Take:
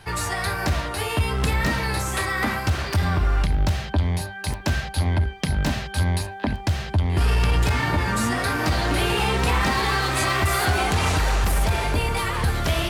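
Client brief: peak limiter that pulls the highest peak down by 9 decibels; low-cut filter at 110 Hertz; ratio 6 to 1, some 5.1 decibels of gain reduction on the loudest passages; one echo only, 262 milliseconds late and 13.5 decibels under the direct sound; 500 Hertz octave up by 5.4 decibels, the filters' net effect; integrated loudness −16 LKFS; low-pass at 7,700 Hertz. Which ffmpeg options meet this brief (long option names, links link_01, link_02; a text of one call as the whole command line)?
ffmpeg -i in.wav -af "highpass=110,lowpass=7700,equalizer=frequency=500:width_type=o:gain=7,acompressor=threshold=-22dB:ratio=6,alimiter=limit=-18.5dB:level=0:latency=1,aecho=1:1:262:0.211,volume=12dB" out.wav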